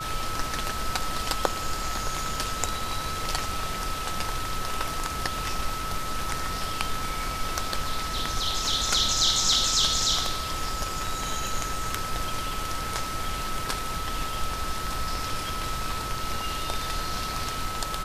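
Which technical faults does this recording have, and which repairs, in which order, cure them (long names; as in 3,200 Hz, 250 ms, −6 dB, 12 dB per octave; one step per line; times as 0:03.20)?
whistle 1,300 Hz −33 dBFS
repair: notch filter 1,300 Hz, Q 30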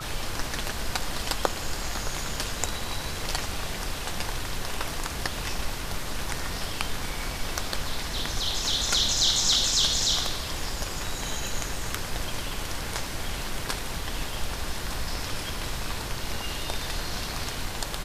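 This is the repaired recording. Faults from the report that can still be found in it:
none of them is left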